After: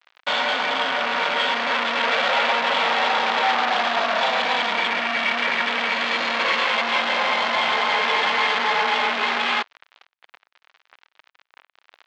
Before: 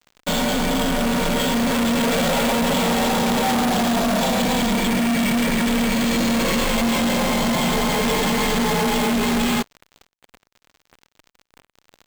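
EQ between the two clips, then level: high-pass 1 kHz 12 dB/octave; low-pass 4.3 kHz 12 dB/octave; distance through air 170 m; +7.5 dB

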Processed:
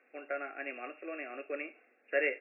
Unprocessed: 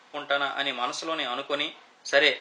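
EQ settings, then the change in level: brick-wall FIR band-pass 160–2800 Hz; static phaser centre 400 Hz, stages 4; -6.5 dB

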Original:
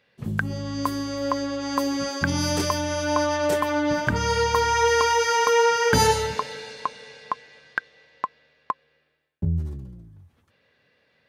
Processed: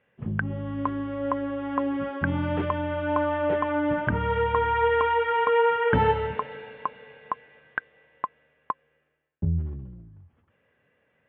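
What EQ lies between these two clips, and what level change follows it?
elliptic low-pass 3.2 kHz, stop band 50 dB; distance through air 410 m; 0.0 dB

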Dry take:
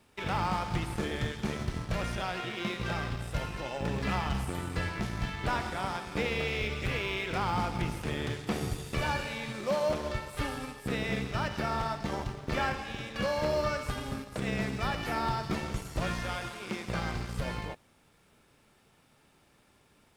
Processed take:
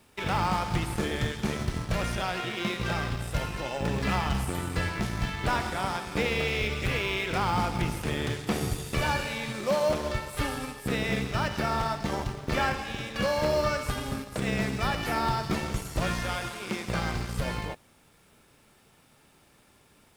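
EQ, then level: treble shelf 8.1 kHz +6 dB; +3.5 dB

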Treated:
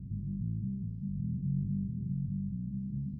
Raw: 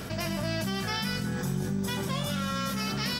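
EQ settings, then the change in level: inverse Chebyshev low-pass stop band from 640 Hz, stop band 60 dB; 0.0 dB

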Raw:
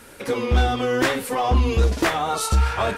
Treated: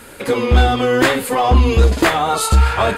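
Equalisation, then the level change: band-stop 5.7 kHz, Q 6.3; +6.5 dB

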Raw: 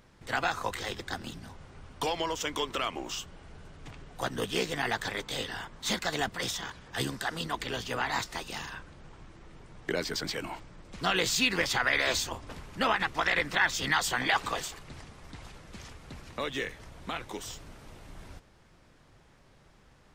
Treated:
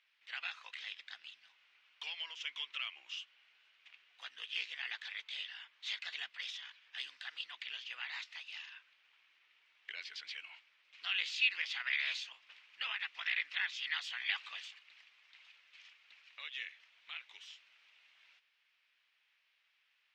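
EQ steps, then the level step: resonant high-pass 2.6 kHz, resonance Q 2.5; distance through air 220 m; peaking EQ 10 kHz +2 dB; -7.0 dB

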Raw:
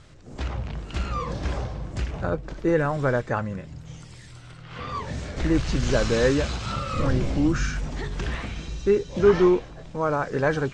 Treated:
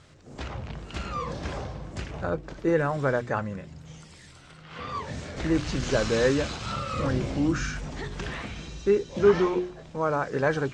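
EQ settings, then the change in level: high-pass 82 Hz 6 dB/octave; hum notches 60/120/180/240/300/360 Hz; -1.5 dB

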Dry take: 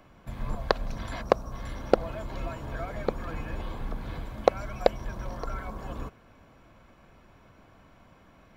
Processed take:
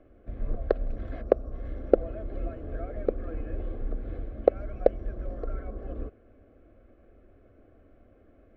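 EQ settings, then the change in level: low-pass 1 kHz 12 dB/octave; static phaser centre 390 Hz, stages 4; +3.5 dB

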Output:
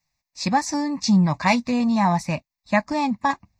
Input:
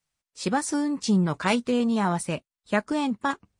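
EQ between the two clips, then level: static phaser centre 2.1 kHz, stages 8; +7.5 dB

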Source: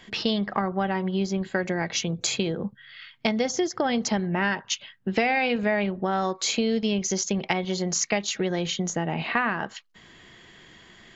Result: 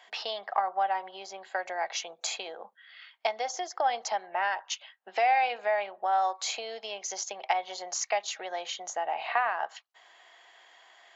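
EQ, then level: ladder high-pass 650 Hz, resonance 60%; +4.0 dB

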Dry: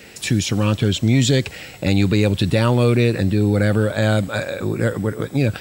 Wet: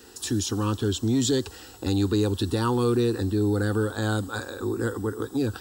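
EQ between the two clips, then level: static phaser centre 600 Hz, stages 6; -2.5 dB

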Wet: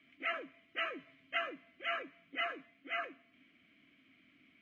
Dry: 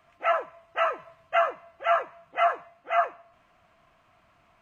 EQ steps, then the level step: dynamic bell 2.2 kHz, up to -5 dB, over -45 dBFS, Q 2.4; vowel filter i; +12.0 dB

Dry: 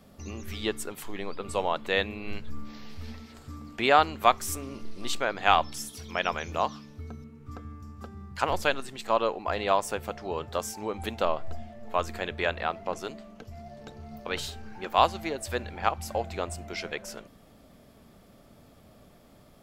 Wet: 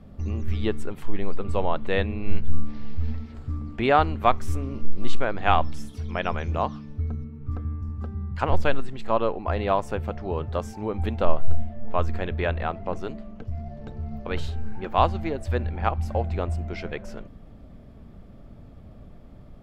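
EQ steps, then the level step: tone controls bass -1 dB, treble -8 dB; RIAA curve playback; treble shelf 4.6 kHz +9 dB; 0.0 dB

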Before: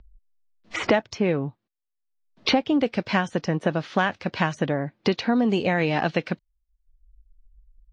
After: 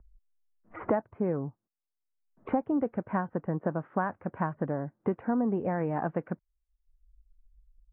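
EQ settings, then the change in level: inverse Chebyshev low-pass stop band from 5 kHz, stop band 60 dB; dynamic bell 1 kHz, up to +4 dB, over -38 dBFS, Q 4.1; distance through air 350 m; -6.0 dB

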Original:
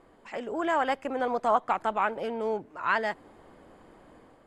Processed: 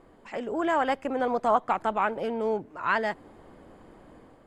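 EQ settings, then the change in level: bass shelf 410 Hz +5 dB; 0.0 dB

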